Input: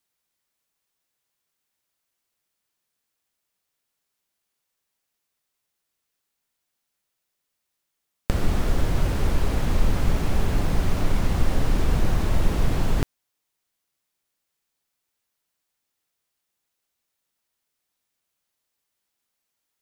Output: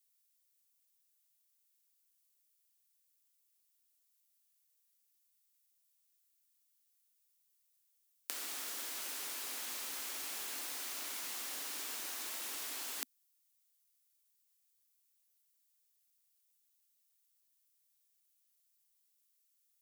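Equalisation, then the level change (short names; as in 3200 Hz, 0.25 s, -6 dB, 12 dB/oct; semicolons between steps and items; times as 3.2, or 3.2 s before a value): elliptic high-pass 250 Hz, stop band 60 dB; differentiator; bell 560 Hz -4 dB 0.96 oct; +1.5 dB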